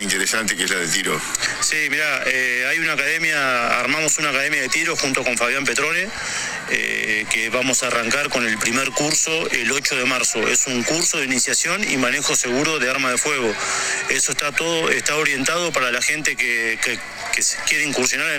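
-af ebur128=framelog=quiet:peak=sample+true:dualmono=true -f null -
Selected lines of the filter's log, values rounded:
Integrated loudness:
  I:         -15.3 LUFS
  Threshold: -25.3 LUFS
Loudness range:
  LRA:         1.5 LU
  Threshold: -35.2 LUFS
  LRA low:   -16.0 LUFS
  LRA high:  -14.5 LUFS
Sample peak:
  Peak:       -3.2 dBFS
True peak:
  Peak:       -2.7 dBFS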